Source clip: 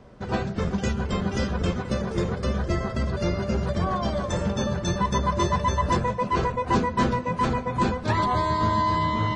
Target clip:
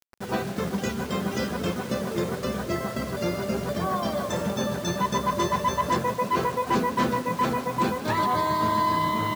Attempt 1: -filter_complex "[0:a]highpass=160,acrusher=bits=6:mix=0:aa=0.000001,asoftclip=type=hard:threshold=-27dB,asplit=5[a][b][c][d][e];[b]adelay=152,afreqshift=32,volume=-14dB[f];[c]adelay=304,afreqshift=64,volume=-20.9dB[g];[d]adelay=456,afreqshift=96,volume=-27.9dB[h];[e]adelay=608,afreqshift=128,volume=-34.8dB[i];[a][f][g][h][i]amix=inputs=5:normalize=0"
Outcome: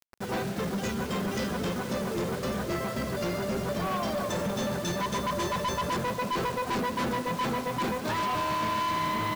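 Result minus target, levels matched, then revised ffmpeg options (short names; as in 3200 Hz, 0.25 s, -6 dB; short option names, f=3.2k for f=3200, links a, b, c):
hard clip: distortion +16 dB
-filter_complex "[0:a]highpass=160,acrusher=bits=6:mix=0:aa=0.000001,asoftclip=type=hard:threshold=-17dB,asplit=5[a][b][c][d][e];[b]adelay=152,afreqshift=32,volume=-14dB[f];[c]adelay=304,afreqshift=64,volume=-20.9dB[g];[d]adelay=456,afreqshift=96,volume=-27.9dB[h];[e]adelay=608,afreqshift=128,volume=-34.8dB[i];[a][f][g][h][i]amix=inputs=5:normalize=0"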